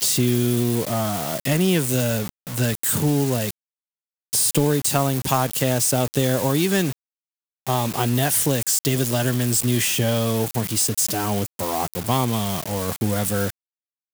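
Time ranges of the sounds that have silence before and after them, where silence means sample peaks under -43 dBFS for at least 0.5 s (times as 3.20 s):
4.33–6.93 s
7.67–13.50 s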